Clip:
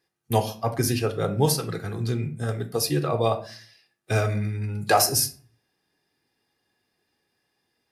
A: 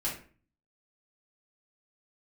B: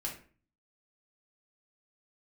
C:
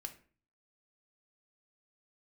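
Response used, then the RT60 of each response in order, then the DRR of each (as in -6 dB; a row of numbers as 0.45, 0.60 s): C; 0.40, 0.40, 0.40 s; -7.0, -2.0, 6.5 dB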